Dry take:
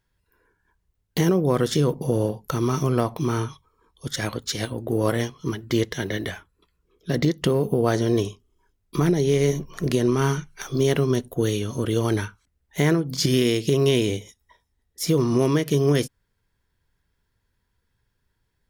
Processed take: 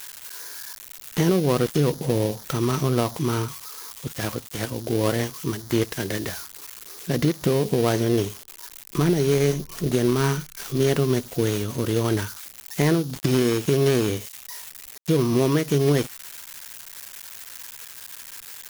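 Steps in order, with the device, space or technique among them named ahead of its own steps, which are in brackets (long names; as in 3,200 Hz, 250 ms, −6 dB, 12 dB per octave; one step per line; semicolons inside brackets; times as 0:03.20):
budget class-D amplifier (gap after every zero crossing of 0.19 ms; spike at every zero crossing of −20.5 dBFS)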